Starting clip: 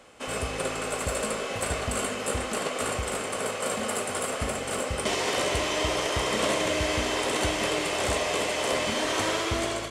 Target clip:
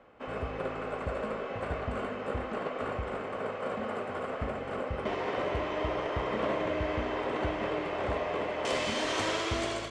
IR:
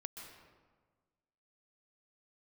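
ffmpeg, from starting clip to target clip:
-af "asetnsamples=n=441:p=0,asendcmd='8.65 lowpass f 6300',lowpass=1.7k,volume=-3.5dB"

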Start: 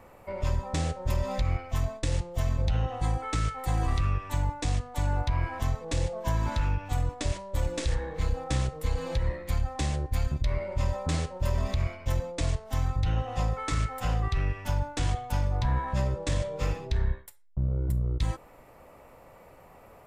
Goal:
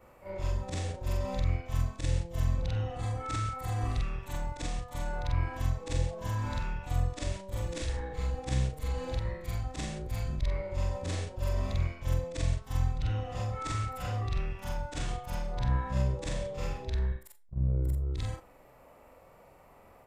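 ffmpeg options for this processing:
-af "afftfilt=real='re':imag='-im':win_size=4096:overlap=0.75"

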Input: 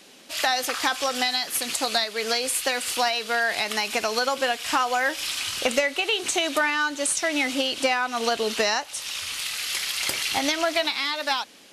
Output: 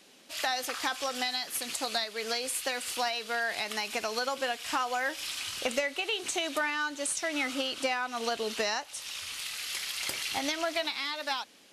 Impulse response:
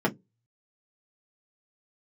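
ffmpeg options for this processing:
-filter_complex "[0:a]asettb=1/sr,asplit=3[a][b][c];[a]atrim=end=7.334[d];[b]atrim=start=7.33:end=7.82,asetpts=PTS-STARTPTS,afade=t=in:d=0.004:c=qsin,afade=t=out:st=0.486:d=0.004:c=qsin,equalizer=f=1.3k:w=3.3:g=9.5[e];[c]atrim=start=7.816[f];[d][e]acrossfade=d=0.004:c1=hsin:c2=qsin[g];[g][f]acrossfade=d=0.004:c1=qsin:c2=hsin,volume=-7.5dB"

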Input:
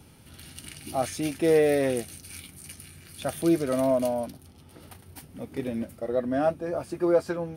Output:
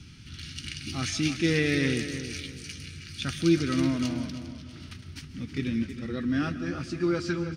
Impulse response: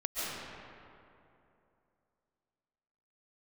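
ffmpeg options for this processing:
-filter_complex "[0:a]firequalizer=gain_entry='entry(100,0);entry(330,-7);entry(610,-29);entry(1300,-5);entry(2400,0);entry(5800,2);entry(11000,-24)':delay=0.05:min_phase=1,asplit=2[a][b];[b]adelay=318,lowpass=f=4.8k:p=1,volume=-10dB,asplit=2[c][d];[d]adelay=318,lowpass=f=4.8k:p=1,volume=0.34,asplit=2[e][f];[f]adelay=318,lowpass=f=4.8k:p=1,volume=0.34,asplit=2[g][h];[h]adelay=318,lowpass=f=4.8k:p=1,volume=0.34[i];[a][c][e][g][i]amix=inputs=5:normalize=0,asplit=2[j][k];[1:a]atrim=start_sample=2205,afade=t=out:st=0.26:d=0.01,atrim=end_sample=11907[l];[k][l]afir=irnorm=-1:irlink=0,volume=-14.5dB[m];[j][m]amix=inputs=2:normalize=0,volume=6dB"

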